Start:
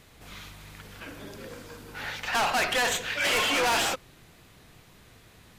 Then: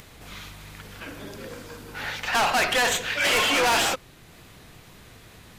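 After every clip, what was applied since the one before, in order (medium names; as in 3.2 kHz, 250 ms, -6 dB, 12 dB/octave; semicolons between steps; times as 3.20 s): upward compressor, threshold -46 dBFS; trim +3.5 dB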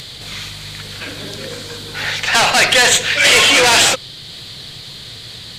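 band noise 3–4.7 kHz -49 dBFS; graphic EQ 125/500/2000/4000/8000 Hz +10/+5/+6/+8/+10 dB; trim +3.5 dB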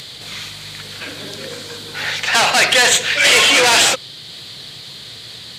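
high-pass 160 Hz 6 dB/octave; trim -1 dB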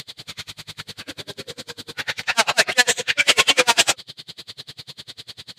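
logarithmic tremolo 10 Hz, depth 35 dB; trim +1.5 dB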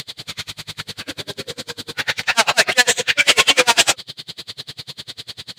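in parallel at 0 dB: peak limiter -10.5 dBFS, peak gain reduction 9 dB; on the sum: short-mantissa float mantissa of 4-bit; trim -1 dB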